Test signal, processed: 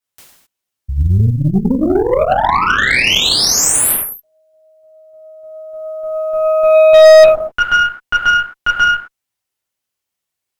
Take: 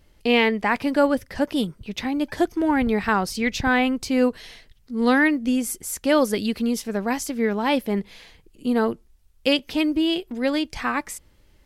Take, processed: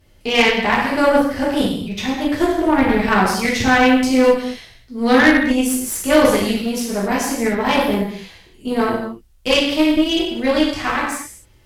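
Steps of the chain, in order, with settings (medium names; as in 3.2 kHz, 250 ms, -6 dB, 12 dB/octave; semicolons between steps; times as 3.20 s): gated-style reverb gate 290 ms falling, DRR -6.5 dB; Chebyshev shaper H 2 -16 dB, 3 -39 dB, 8 -20 dB, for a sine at 4 dBFS; short-mantissa float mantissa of 6-bit; trim -1 dB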